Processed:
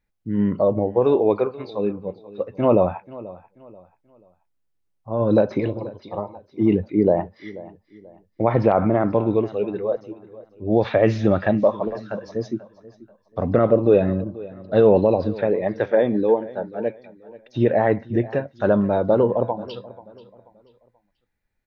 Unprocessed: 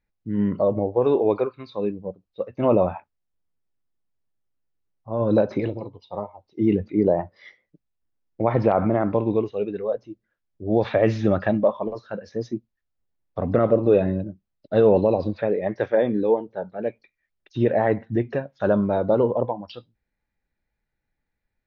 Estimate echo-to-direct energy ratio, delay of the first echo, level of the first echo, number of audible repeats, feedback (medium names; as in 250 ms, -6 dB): -18.5 dB, 485 ms, -19.0 dB, 2, 33%